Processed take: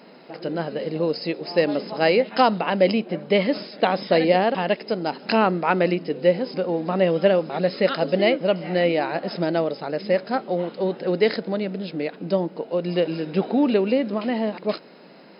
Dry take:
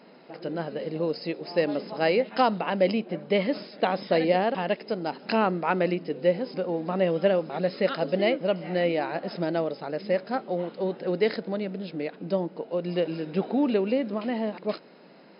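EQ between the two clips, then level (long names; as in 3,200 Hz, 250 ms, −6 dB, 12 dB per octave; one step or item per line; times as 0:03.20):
high-shelf EQ 4,400 Hz +4.5 dB
+4.5 dB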